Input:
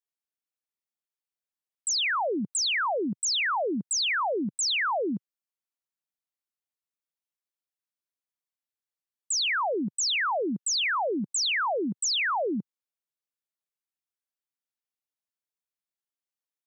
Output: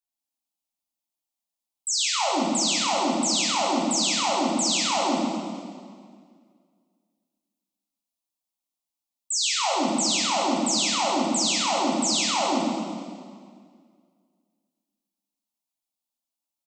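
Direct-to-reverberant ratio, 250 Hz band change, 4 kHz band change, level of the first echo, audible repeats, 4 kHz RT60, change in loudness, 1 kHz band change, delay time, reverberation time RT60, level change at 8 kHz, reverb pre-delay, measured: −5.0 dB, +6.5 dB, +4.0 dB, −4.0 dB, 1, 1.7 s, +3.5 dB, +5.0 dB, 134 ms, 2.0 s, +5.5 dB, 6 ms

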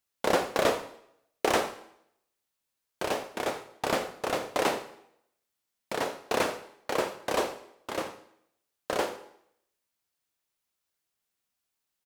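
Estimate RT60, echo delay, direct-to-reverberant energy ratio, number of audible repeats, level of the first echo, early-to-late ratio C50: 0.70 s, 83 ms, 9.0 dB, 1, −17.5 dB, 12.0 dB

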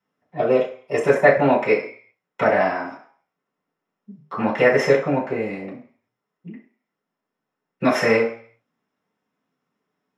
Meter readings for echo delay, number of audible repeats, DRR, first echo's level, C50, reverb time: no echo audible, no echo audible, −7.5 dB, no echo audible, 7.5 dB, 0.45 s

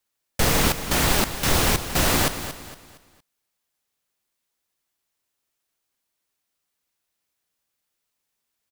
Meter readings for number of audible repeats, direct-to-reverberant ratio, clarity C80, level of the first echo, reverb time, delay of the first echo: 3, no reverb audible, no reverb audible, −11.5 dB, no reverb audible, 231 ms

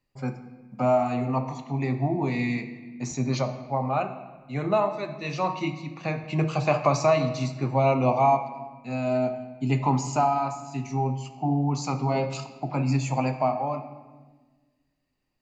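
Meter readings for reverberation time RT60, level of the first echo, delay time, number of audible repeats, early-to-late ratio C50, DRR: 1.4 s, no echo audible, no echo audible, no echo audible, 10.5 dB, 8.0 dB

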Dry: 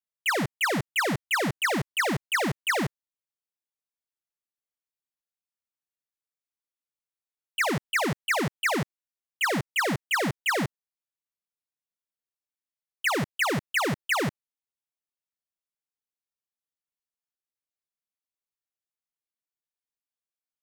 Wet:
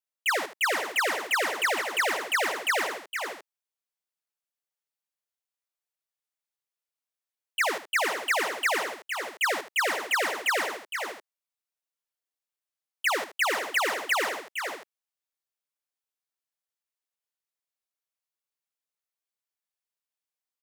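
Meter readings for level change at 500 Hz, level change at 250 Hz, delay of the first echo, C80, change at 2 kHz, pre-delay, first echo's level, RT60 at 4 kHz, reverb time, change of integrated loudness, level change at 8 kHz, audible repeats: −0.5 dB, −12.5 dB, 75 ms, no reverb audible, +1.0 dB, no reverb audible, −12.0 dB, no reverb audible, no reverb audible, −0.5 dB, +1.5 dB, 3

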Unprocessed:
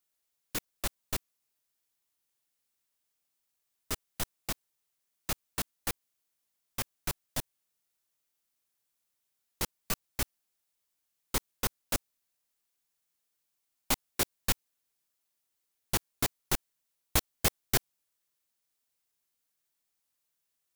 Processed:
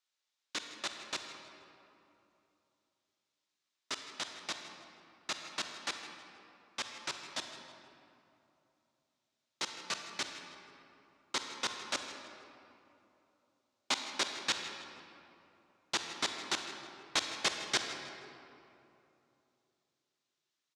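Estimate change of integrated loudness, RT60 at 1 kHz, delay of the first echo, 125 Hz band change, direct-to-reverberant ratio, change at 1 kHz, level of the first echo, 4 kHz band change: −3.5 dB, 2.8 s, 159 ms, −19.0 dB, 4.5 dB, −0.5 dB, −16.0 dB, +2.5 dB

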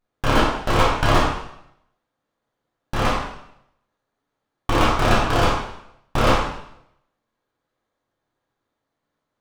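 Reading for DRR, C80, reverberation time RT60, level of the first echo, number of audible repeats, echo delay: −5.5 dB, 5.5 dB, 0.75 s, no echo audible, no echo audible, no echo audible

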